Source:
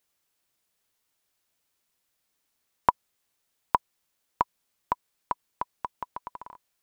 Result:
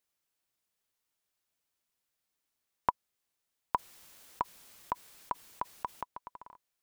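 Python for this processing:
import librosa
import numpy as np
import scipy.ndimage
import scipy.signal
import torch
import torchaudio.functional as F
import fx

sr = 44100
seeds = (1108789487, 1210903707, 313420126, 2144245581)

y = fx.env_flatten(x, sr, amount_pct=50, at=(3.75, 6.03))
y = F.gain(torch.from_numpy(y), -7.5).numpy()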